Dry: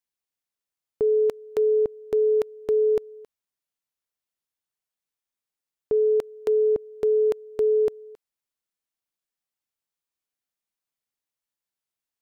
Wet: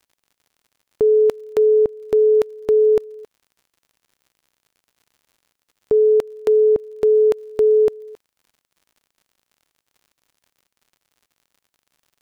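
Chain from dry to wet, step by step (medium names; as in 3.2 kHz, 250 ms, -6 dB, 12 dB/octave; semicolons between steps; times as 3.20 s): crackle 80 per s -52 dBFS; trim +6.5 dB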